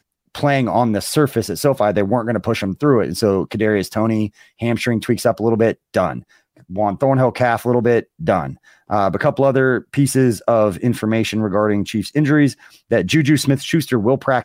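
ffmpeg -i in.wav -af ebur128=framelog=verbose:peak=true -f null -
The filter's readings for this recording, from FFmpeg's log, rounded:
Integrated loudness:
  I:         -17.6 LUFS
  Threshold: -27.8 LUFS
Loudness range:
  LRA:         1.9 LU
  Threshold: -37.9 LUFS
  LRA low:   -19.0 LUFS
  LRA high:  -17.1 LUFS
True peak:
  Peak:       -3.2 dBFS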